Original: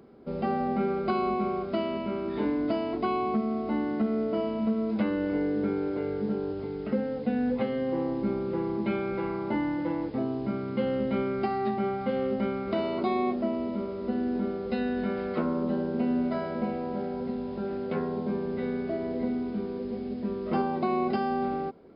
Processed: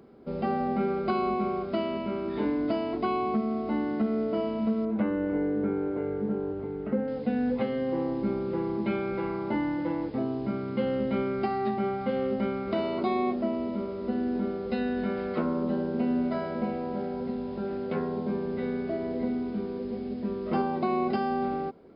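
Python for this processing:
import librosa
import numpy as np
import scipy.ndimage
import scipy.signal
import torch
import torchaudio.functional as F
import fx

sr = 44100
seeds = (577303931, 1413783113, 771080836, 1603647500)

y = fx.lowpass(x, sr, hz=1900.0, slope=12, at=(4.85, 7.08))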